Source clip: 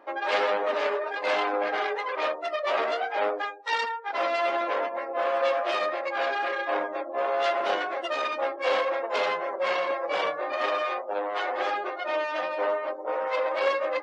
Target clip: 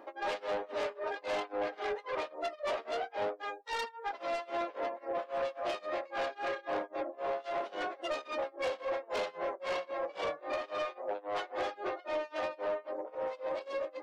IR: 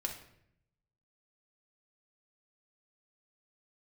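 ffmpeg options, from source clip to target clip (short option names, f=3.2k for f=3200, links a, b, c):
-af "asetnsamples=n=441:p=0,asendcmd='13.15 equalizer g -13.5',equalizer=f=1.6k:w=0.47:g=-7,acompressor=threshold=-34dB:ratio=2.5,tremolo=f=3.7:d=0.96,asoftclip=type=tanh:threshold=-33dB,volume=5.5dB"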